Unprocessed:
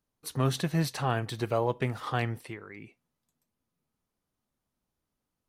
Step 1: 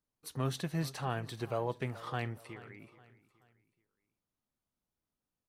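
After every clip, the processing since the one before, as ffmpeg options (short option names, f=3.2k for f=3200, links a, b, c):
-af "aecho=1:1:425|850|1275:0.126|0.0504|0.0201,volume=-7dB"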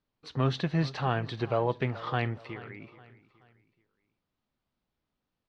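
-af "lowpass=f=4.5k:w=0.5412,lowpass=f=4.5k:w=1.3066,volume=7dB"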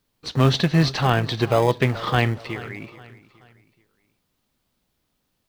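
-filter_complex "[0:a]highshelf=f=3.6k:g=11,asplit=2[a][b];[b]acrusher=samples=31:mix=1:aa=0.000001,volume=-12dB[c];[a][c]amix=inputs=2:normalize=0,volume=8dB"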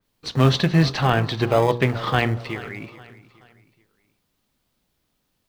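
-af "bandreject=f=59.95:t=h:w=4,bandreject=f=119.9:t=h:w=4,bandreject=f=179.85:t=h:w=4,bandreject=f=239.8:t=h:w=4,bandreject=f=299.75:t=h:w=4,bandreject=f=359.7:t=h:w=4,bandreject=f=419.65:t=h:w=4,bandreject=f=479.6:t=h:w=4,bandreject=f=539.55:t=h:w=4,bandreject=f=599.5:t=h:w=4,bandreject=f=659.45:t=h:w=4,bandreject=f=719.4:t=h:w=4,bandreject=f=779.35:t=h:w=4,bandreject=f=839.3:t=h:w=4,bandreject=f=899.25:t=h:w=4,bandreject=f=959.2:t=h:w=4,bandreject=f=1.01915k:t=h:w=4,bandreject=f=1.0791k:t=h:w=4,bandreject=f=1.13905k:t=h:w=4,bandreject=f=1.199k:t=h:w=4,bandreject=f=1.25895k:t=h:w=4,bandreject=f=1.3189k:t=h:w=4,bandreject=f=1.37885k:t=h:w=4,bandreject=f=1.4388k:t=h:w=4,adynamicequalizer=threshold=0.0178:dfrequency=3400:dqfactor=0.7:tfrequency=3400:tqfactor=0.7:attack=5:release=100:ratio=0.375:range=2:mode=cutabove:tftype=highshelf,volume=1dB"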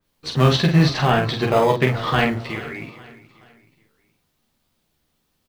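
-af "aecho=1:1:13|47:0.596|0.596"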